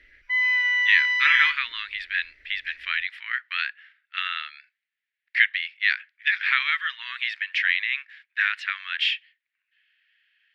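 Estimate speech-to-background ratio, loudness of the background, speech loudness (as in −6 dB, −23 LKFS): −3.5 dB, −21.0 LKFS, −24.5 LKFS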